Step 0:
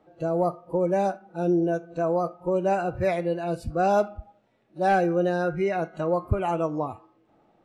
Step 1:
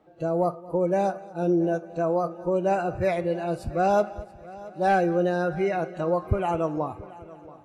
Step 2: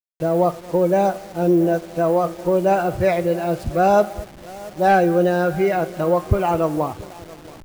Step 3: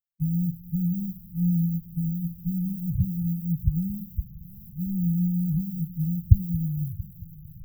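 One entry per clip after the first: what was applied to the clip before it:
multi-head delay 226 ms, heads first and third, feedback 46%, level -20 dB
send-on-delta sampling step -42 dBFS; trim +6.5 dB
brick-wall FIR band-stop 190–13000 Hz; trim +4 dB

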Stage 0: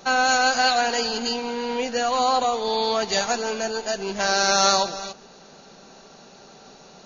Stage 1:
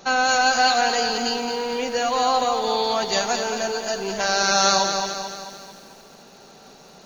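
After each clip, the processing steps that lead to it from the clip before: bit-crushed delay 220 ms, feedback 55%, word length 8-bit, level -7 dB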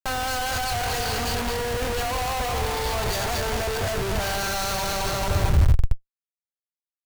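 Schmitt trigger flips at -33 dBFS; resonant low shelf 140 Hz +13 dB, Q 1.5; trim -3.5 dB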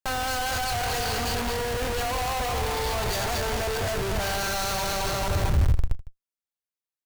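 delay 156 ms -19.5 dB; in parallel at -5 dB: overload inside the chain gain 23.5 dB; on the sum: trim -5 dB

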